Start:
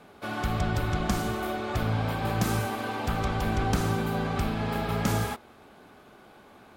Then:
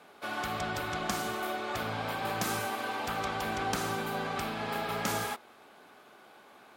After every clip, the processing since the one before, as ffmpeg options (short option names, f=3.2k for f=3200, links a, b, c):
-af "highpass=f=590:p=1"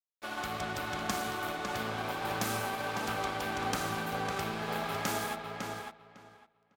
-filter_complex "[0:a]aeval=exprs='sgn(val(0))*max(abs(val(0))-0.00596,0)':c=same,asplit=2[a][b];[b]adelay=553,lowpass=f=4.2k:p=1,volume=-4.5dB,asplit=2[c][d];[d]adelay=553,lowpass=f=4.2k:p=1,volume=0.17,asplit=2[e][f];[f]adelay=553,lowpass=f=4.2k:p=1,volume=0.17[g];[c][e][g]amix=inputs=3:normalize=0[h];[a][h]amix=inputs=2:normalize=0"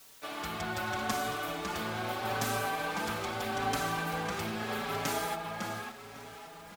-filter_complex "[0:a]aeval=exprs='val(0)+0.5*0.00708*sgn(val(0))':c=same,asplit=2[a][b];[b]adelay=4.8,afreqshift=0.81[c];[a][c]amix=inputs=2:normalize=1,volume=2.5dB"